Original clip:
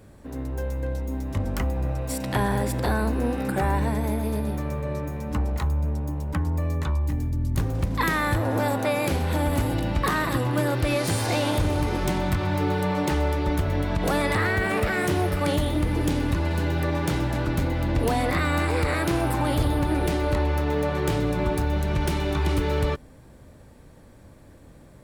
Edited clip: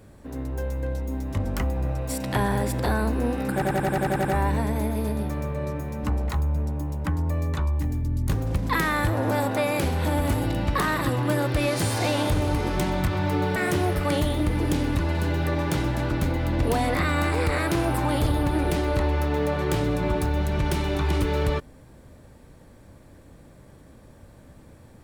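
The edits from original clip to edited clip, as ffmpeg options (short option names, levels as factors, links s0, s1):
-filter_complex "[0:a]asplit=10[s0][s1][s2][s3][s4][s5][s6][s7][s8][s9];[s0]atrim=end=3.622[s10];[s1]atrim=start=3.528:end=3.622[s11];[s2]atrim=start=3.528:end=3.622[s12];[s3]atrim=start=3.528:end=3.622[s13];[s4]atrim=start=3.528:end=3.622[s14];[s5]atrim=start=3.528:end=3.622[s15];[s6]atrim=start=3.528:end=3.622[s16];[s7]atrim=start=3.528:end=3.622[s17];[s8]atrim=start=3.528:end=12.842[s18];[s9]atrim=start=14.918[s19];[s10][s11]acrossfade=d=0.004:c1=hsin:c2=hsin[s20];[s20][s12]acrossfade=d=0.004:c1=hsin:c2=hsin[s21];[s21][s13]acrossfade=d=0.004:c1=hsin:c2=hsin[s22];[s22][s14]acrossfade=d=0.004:c1=hsin:c2=hsin[s23];[s23][s15]acrossfade=d=0.004:c1=hsin:c2=hsin[s24];[s24][s16]acrossfade=d=0.004:c1=hsin:c2=hsin[s25];[s25][s17]acrossfade=d=0.004:c1=hsin:c2=hsin[s26];[s26][s18]acrossfade=d=0.004:c1=hsin:c2=hsin[s27];[s27][s19]acrossfade=d=0.004:c1=hsin:c2=hsin"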